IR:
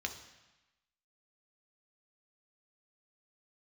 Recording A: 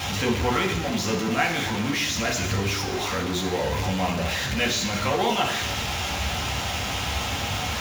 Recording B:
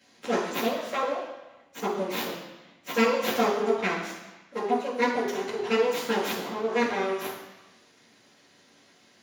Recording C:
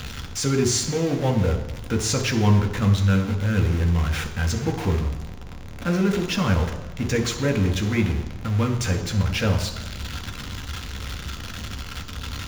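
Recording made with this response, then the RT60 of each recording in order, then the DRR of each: C; 1.0 s, 1.0 s, 1.0 s; 0.0 dB, -10.0 dB, 4.0 dB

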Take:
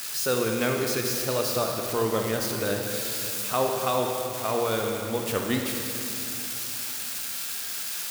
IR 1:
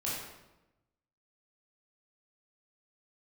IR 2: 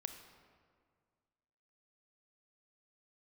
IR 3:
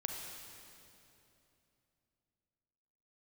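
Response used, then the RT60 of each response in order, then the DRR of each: 3; 1.0 s, 1.9 s, 2.9 s; -7.0 dB, 7.0 dB, 1.5 dB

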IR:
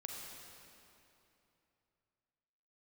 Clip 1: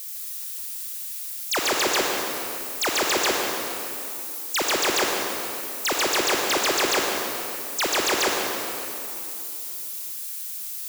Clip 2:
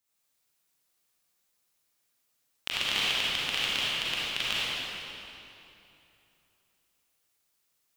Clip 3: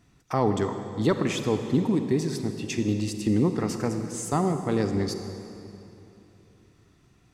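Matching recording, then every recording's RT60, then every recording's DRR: 1; 2.9 s, 2.9 s, 2.9 s; -0.5 dB, -8.5 dB, 7.0 dB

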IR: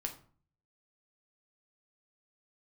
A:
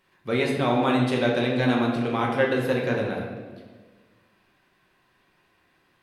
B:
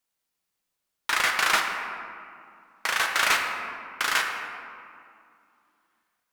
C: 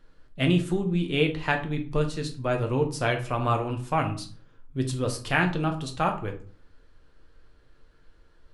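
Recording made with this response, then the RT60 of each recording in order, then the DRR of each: C; 1.5 s, 2.4 s, 0.45 s; -2.0 dB, 2.0 dB, 3.0 dB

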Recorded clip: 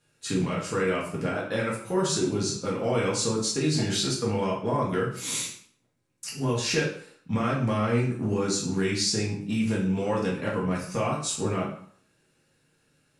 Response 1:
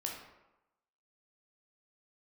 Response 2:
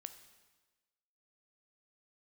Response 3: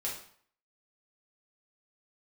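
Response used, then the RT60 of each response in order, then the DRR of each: 3; 0.95 s, 1.3 s, 0.55 s; -0.5 dB, 9.0 dB, -5.0 dB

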